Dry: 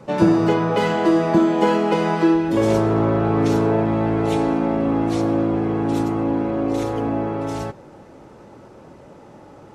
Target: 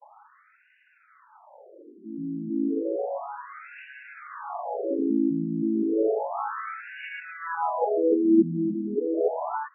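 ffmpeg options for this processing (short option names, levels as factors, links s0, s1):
-af "areverse,highshelf=f=5500:g=10,afftfilt=real='re*between(b*sr/1024,230*pow(2100/230,0.5+0.5*sin(2*PI*0.32*pts/sr))/1.41,230*pow(2100/230,0.5+0.5*sin(2*PI*0.32*pts/sr))*1.41)':imag='im*between(b*sr/1024,230*pow(2100/230,0.5+0.5*sin(2*PI*0.32*pts/sr))/1.41,230*pow(2100/230,0.5+0.5*sin(2*PI*0.32*pts/sr))*1.41)':win_size=1024:overlap=0.75,volume=0.841"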